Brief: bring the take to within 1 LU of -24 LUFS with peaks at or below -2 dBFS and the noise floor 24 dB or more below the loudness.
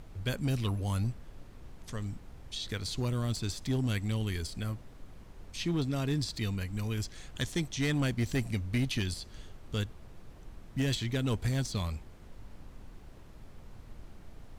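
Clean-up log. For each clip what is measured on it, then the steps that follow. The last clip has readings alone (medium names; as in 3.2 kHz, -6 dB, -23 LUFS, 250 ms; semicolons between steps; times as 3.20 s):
clipped samples 0.9%; clipping level -24.0 dBFS; noise floor -51 dBFS; noise floor target -58 dBFS; loudness -34.0 LUFS; peak level -24.0 dBFS; loudness target -24.0 LUFS
-> clip repair -24 dBFS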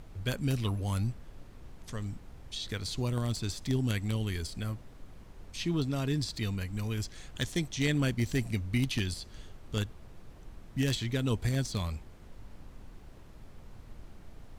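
clipped samples 0.0%; noise floor -51 dBFS; noise floor target -58 dBFS
-> noise print and reduce 7 dB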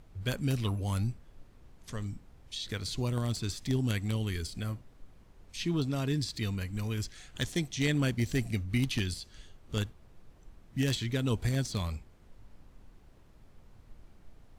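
noise floor -58 dBFS; loudness -33.0 LUFS; peak level -15.0 dBFS; loudness target -24.0 LUFS
-> trim +9 dB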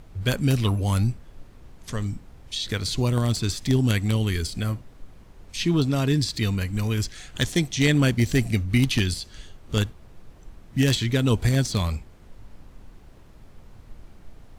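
loudness -24.0 LUFS; peak level -6.0 dBFS; noise floor -49 dBFS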